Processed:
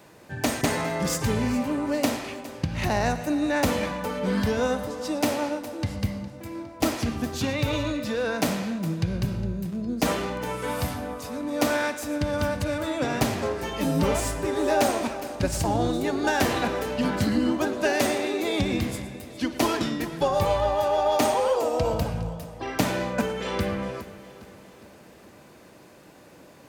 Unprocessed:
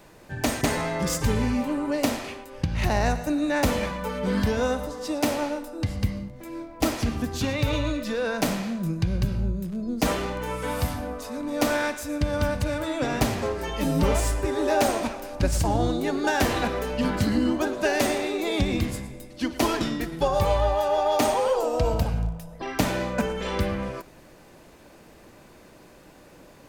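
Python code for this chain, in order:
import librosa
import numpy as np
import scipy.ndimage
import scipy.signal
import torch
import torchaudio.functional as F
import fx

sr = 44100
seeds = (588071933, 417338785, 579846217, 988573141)

y = scipy.signal.sosfilt(scipy.signal.butter(2, 84.0, 'highpass', fs=sr, output='sos'), x)
y = fx.echo_feedback(y, sr, ms=410, feedback_pct=51, wet_db=-16.5)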